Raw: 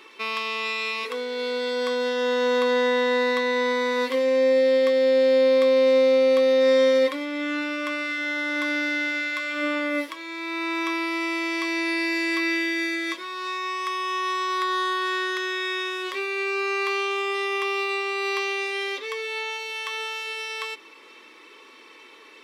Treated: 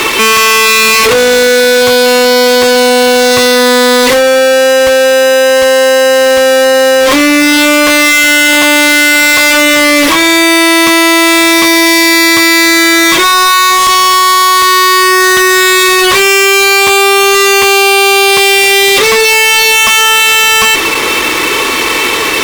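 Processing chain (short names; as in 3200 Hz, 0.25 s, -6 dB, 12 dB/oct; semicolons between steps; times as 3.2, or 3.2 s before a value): in parallel at +2 dB: limiter -20 dBFS, peak gain reduction 9 dB; on the sum: fuzz box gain 46 dB, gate -45 dBFS; gain +7.5 dB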